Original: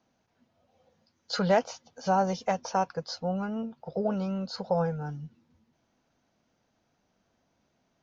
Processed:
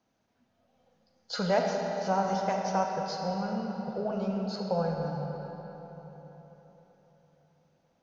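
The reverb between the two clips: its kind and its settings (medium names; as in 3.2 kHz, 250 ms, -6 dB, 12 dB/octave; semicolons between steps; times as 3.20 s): algorithmic reverb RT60 4.2 s, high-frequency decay 0.7×, pre-delay 0 ms, DRR 0.5 dB; trim -3.5 dB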